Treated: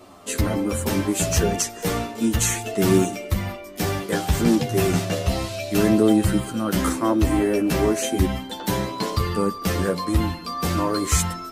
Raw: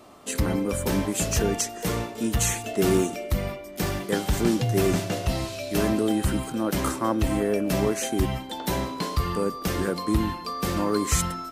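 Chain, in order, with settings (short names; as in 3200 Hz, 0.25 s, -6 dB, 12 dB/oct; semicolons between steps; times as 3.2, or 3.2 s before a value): chorus voices 2, 0.33 Hz, delay 11 ms, depth 1.9 ms; gain +6 dB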